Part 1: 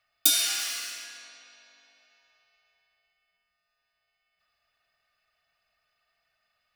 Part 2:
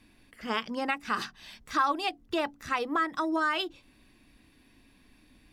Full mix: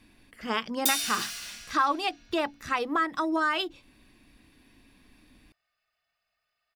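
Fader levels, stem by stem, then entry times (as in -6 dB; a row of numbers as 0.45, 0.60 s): -5.0, +1.5 dB; 0.60, 0.00 s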